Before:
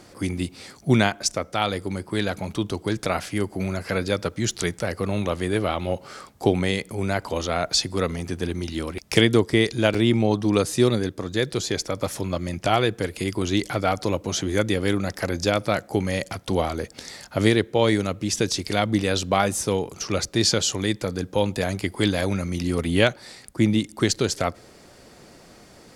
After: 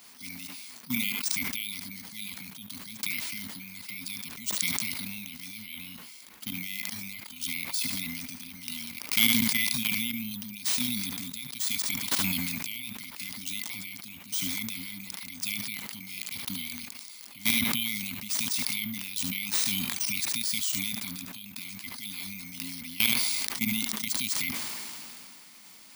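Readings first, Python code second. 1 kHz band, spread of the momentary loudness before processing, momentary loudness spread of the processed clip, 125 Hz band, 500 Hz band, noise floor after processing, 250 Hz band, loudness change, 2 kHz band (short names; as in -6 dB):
-19.0 dB, 8 LU, 15 LU, -18.0 dB, -32.5 dB, -48 dBFS, -13.0 dB, -5.5 dB, -4.5 dB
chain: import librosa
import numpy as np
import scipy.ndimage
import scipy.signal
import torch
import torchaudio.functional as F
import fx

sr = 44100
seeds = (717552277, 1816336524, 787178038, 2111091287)

p1 = fx.level_steps(x, sr, step_db=17)
p2 = scipy.signal.sosfilt(scipy.signal.butter(4, 43.0, 'highpass', fs=sr, output='sos'), p1)
p3 = fx.clip_asym(p2, sr, top_db=-14.5, bottom_db=-9.5)
p4 = fx.brickwall_bandstop(p3, sr, low_hz=270.0, high_hz=2000.0)
p5 = fx.tilt_eq(p4, sr, slope=4.5)
p6 = (np.kron(p5[::3], np.eye(3)[0]) * 3)[:len(p5)]
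p7 = fx.graphic_eq(p6, sr, hz=(250, 1000, 2000, 8000), db=(11, 7, 5, -5))
p8 = p7 + fx.echo_single(p7, sr, ms=73, db=-19.0, dry=0)
p9 = fx.sustainer(p8, sr, db_per_s=21.0)
y = p9 * librosa.db_to_amplitude(-9.0)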